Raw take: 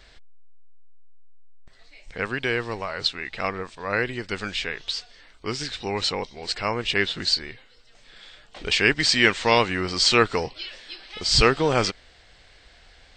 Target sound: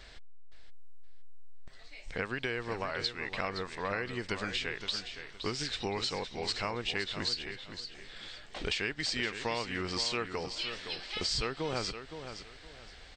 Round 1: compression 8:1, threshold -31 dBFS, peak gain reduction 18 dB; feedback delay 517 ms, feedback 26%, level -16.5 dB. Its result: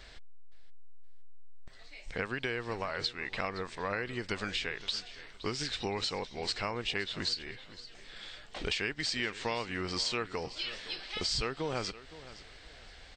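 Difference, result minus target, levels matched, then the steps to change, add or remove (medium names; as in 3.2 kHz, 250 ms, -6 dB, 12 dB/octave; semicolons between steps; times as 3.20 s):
echo-to-direct -7 dB
change: feedback delay 517 ms, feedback 26%, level -9.5 dB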